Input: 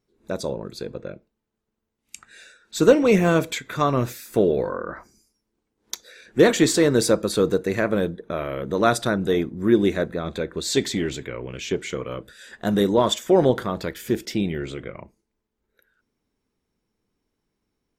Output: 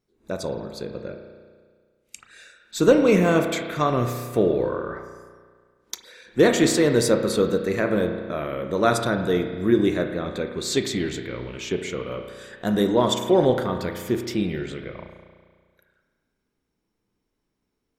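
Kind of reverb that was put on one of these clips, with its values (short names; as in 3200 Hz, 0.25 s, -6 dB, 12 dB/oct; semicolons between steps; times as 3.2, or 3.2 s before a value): spring tank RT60 1.7 s, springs 33 ms, chirp 25 ms, DRR 5.5 dB; gain -1.5 dB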